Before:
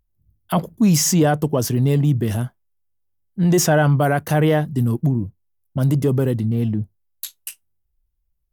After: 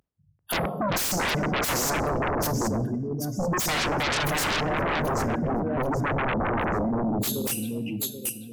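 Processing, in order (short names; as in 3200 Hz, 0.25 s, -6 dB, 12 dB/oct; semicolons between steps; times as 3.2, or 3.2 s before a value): spectral gate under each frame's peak -15 dB strong; HPF 270 Hz 12 dB/oct; high shelf 9700 Hz +9 dB; reverse; compressor 6:1, threshold -28 dBFS, peak gain reduction 13.5 dB; reverse; echo with dull and thin repeats by turns 0.391 s, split 2200 Hz, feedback 54%, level -4 dB; on a send at -11.5 dB: reverb RT60 1.2 s, pre-delay 15 ms; on the sum: sine folder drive 19 dB, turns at -15.5 dBFS; gain -7 dB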